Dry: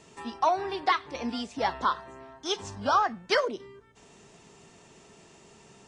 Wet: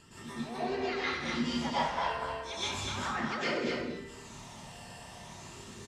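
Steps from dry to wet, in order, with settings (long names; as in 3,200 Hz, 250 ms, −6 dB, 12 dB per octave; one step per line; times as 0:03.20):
dynamic equaliser 2,600 Hz, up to +7 dB, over −47 dBFS, Q 1.9
reversed playback
downward compressor 4 to 1, threshold −38 dBFS, peak gain reduction 17 dB
reversed playback
all-pass phaser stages 12, 0.37 Hz, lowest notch 370–1,100 Hz
pitch-shifted copies added −7 semitones −5 dB, +3 semitones −11 dB, +7 semitones −14 dB
on a send: loudspeakers that aren't time-aligned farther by 65 metres −11 dB, 84 metres −5 dB
on the sum: dense smooth reverb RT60 0.57 s, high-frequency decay 1×, pre-delay 100 ms, DRR −9 dB
level −2 dB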